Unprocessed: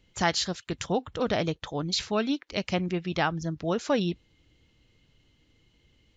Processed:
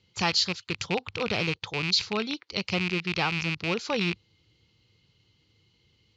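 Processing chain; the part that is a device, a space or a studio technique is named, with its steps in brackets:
car door speaker with a rattle (loose part that buzzes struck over −39 dBFS, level −18 dBFS; loudspeaker in its box 95–6,800 Hz, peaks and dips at 100 Hz +6 dB, 270 Hz −9 dB, 630 Hz −9 dB, 1,700 Hz −6 dB, 4,500 Hz +8 dB)

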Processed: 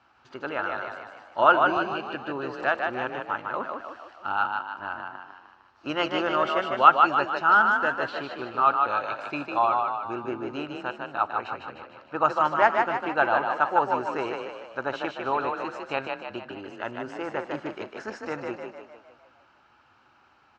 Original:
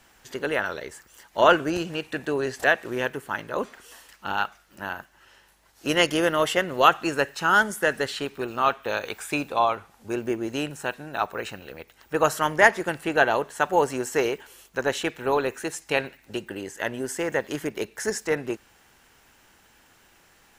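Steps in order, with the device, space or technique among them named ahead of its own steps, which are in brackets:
frequency-shifting delay pedal into a guitar cabinet (echo with shifted repeats 152 ms, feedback 51%, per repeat +33 Hz, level −4 dB; loudspeaker in its box 93–4,000 Hz, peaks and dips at 180 Hz −9 dB, 450 Hz −8 dB, 850 Hz +4 dB, 1,300 Hz +9 dB, 1,900 Hz −10 dB, 3,400 Hz −8 dB)
level −3.5 dB

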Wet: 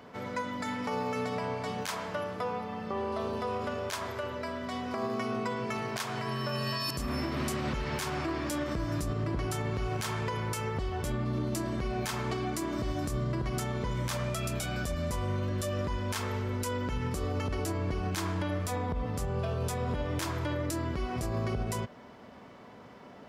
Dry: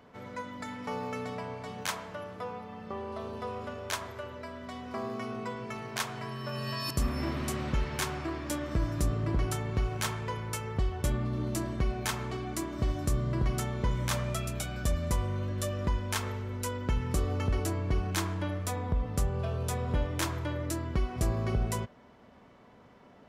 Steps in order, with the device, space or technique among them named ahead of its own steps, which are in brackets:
broadcast voice chain (high-pass filter 99 Hz 6 dB per octave; de-essing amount 45%; downward compressor 3 to 1, threshold −34 dBFS, peak gain reduction 6.5 dB; parametric band 4,900 Hz +3 dB 0.26 octaves; brickwall limiter −30 dBFS, peak gain reduction 9.5 dB)
level +6.5 dB

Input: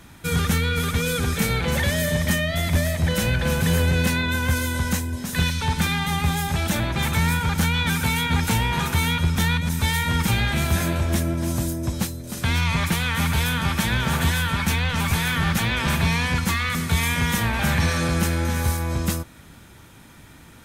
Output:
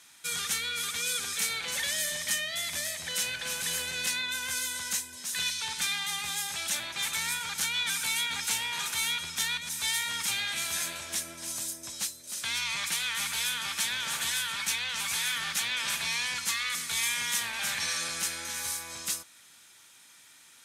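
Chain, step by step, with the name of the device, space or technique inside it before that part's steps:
piezo pickup straight into a mixer (low-pass filter 7,900 Hz 12 dB per octave; first difference)
level +4 dB

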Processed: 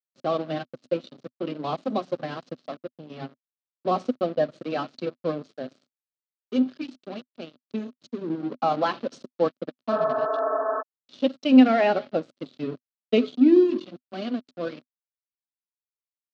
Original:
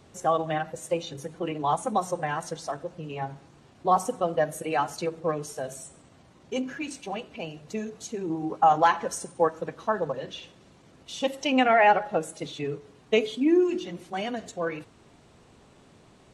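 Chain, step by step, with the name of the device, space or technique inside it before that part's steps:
blown loudspeaker (dead-zone distortion −36 dBFS; loudspeaker in its box 190–4,400 Hz, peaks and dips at 250 Hz +10 dB, 370 Hz +4 dB, 580 Hz +8 dB, 890 Hz −7 dB, 1,300 Hz +4 dB, 3,600 Hz −4 dB)
graphic EQ with 10 bands 125 Hz +10 dB, 250 Hz +6 dB, 2,000 Hz −5 dB, 4,000 Hz +11 dB, 8,000 Hz +4 dB
healed spectral selection 0:09.94–0:10.79, 260–1,800 Hz before
level −3.5 dB

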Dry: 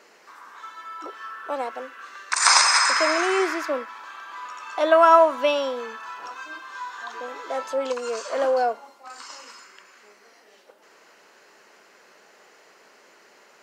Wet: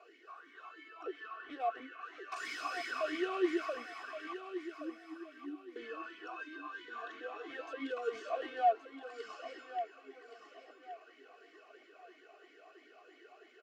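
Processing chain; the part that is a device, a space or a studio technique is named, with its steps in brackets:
0:04.33–0:05.76: inverse Chebyshev band-stop filter 670–4,500 Hz, stop band 60 dB
talk box (tube saturation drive 30 dB, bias 0.3; formant filter swept between two vowels a-i 3 Hz)
comb filter 2.7 ms, depth 80%
repeating echo 1,122 ms, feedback 30%, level −10 dB
level +3.5 dB

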